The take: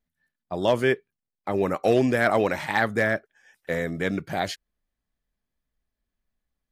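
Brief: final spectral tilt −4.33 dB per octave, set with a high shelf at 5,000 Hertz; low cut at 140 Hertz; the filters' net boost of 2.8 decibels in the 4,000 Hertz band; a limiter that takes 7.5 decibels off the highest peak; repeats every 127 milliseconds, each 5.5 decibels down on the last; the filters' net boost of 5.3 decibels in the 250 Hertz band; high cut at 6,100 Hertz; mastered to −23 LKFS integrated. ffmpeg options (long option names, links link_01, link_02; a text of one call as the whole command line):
ffmpeg -i in.wav -af "highpass=140,lowpass=6100,equalizer=frequency=250:width_type=o:gain=7,equalizer=frequency=4000:width_type=o:gain=6.5,highshelf=frequency=5000:gain=-6,alimiter=limit=-14dB:level=0:latency=1,aecho=1:1:127|254|381|508|635|762|889:0.531|0.281|0.149|0.079|0.0419|0.0222|0.0118,volume=2dB" out.wav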